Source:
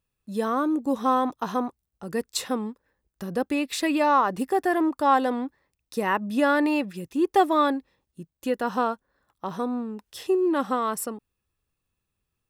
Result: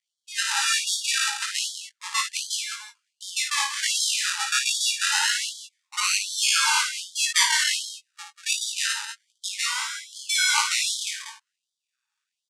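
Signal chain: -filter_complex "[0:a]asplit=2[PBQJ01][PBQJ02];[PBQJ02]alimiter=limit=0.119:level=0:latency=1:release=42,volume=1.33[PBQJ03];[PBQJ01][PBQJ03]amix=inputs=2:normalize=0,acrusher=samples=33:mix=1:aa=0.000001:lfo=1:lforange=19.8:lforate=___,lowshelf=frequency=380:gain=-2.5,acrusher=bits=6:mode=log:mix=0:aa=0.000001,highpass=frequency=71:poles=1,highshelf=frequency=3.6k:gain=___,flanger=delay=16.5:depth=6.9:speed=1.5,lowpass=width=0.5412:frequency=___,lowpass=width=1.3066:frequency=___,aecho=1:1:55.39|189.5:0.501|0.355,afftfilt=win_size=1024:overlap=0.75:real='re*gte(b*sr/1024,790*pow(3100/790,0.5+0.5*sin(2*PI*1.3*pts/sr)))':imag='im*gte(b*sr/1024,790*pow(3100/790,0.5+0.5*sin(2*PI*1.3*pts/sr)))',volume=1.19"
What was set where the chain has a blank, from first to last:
0.27, 10.5, 8.9k, 8.9k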